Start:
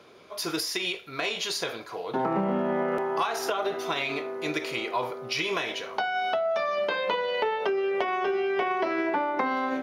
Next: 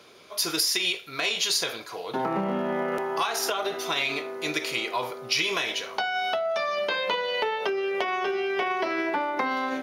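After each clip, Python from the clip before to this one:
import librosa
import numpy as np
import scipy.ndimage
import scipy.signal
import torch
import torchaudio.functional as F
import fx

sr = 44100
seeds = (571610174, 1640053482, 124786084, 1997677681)

y = fx.high_shelf(x, sr, hz=2600.0, db=10.5)
y = y * 10.0 ** (-1.5 / 20.0)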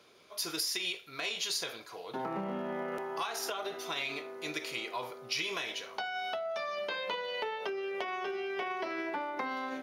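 y = fx.dmg_crackle(x, sr, seeds[0], per_s=14.0, level_db=-46.0)
y = y * 10.0 ** (-9.0 / 20.0)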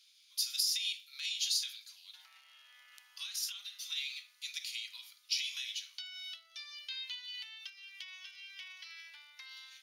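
y = fx.ladder_highpass(x, sr, hz=2800.0, resonance_pct=25)
y = y * 10.0 ** (6.5 / 20.0)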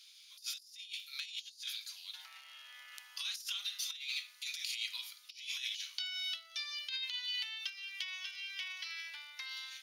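y = fx.over_compress(x, sr, threshold_db=-43.0, ratio=-0.5)
y = y * 10.0 ** (2.5 / 20.0)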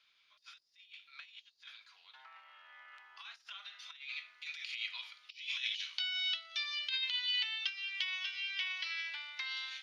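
y = fx.filter_sweep_lowpass(x, sr, from_hz=1300.0, to_hz=3600.0, start_s=3.29, end_s=6.25, q=0.9)
y = y * 10.0 ** (4.5 / 20.0)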